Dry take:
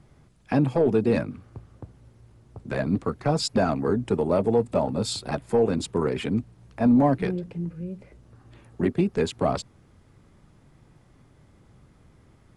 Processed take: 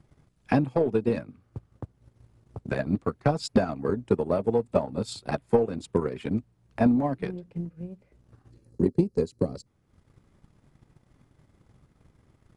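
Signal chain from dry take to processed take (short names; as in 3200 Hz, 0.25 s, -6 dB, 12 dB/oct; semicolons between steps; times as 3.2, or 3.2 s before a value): spectral gain 8.5–9.66, 580–3900 Hz -14 dB; transient shaper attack +10 dB, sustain -7 dB; gain -6.5 dB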